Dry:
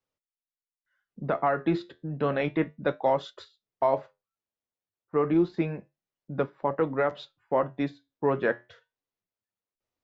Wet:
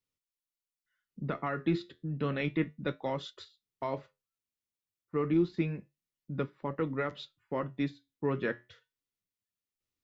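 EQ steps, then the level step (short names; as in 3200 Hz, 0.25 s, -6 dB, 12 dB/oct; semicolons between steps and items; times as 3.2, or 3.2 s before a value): bell 720 Hz -14 dB 1.4 oct; notch 1600 Hz, Q 12; 0.0 dB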